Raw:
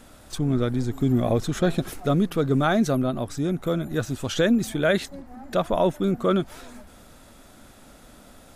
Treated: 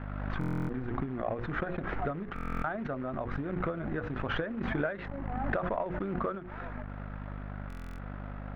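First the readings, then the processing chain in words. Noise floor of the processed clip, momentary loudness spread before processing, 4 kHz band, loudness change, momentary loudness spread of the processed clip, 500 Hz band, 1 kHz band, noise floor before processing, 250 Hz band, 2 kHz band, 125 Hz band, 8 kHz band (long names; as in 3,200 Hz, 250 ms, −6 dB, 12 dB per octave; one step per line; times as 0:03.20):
−41 dBFS, 7 LU, −16.0 dB, −11.5 dB, 10 LU, −11.0 dB, −6.0 dB, −50 dBFS, −12.0 dB, −5.0 dB, −10.0 dB, below −30 dB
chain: variable-slope delta modulation 64 kbit/s
mains hum 50 Hz, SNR 15 dB
downward compressor 12 to 1, threshold −34 dBFS, peak gain reduction 18.5 dB
mains-hum notches 60/120/180/240/300/360/420/480/540 Hz
floating-point word with a short mantissa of 2 bits
low-pass filter 1,800 Hz 24 dB per octave
tilt shelving filter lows −5.5 dB, about 670 Hz
transient designer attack +6 dB, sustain −7 dB
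buffer that repeats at 0:00.39/0:02.34/0:07.68, samples 1,024, times 12
background raised ahead of every attack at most 23 dB per second
level +3 dB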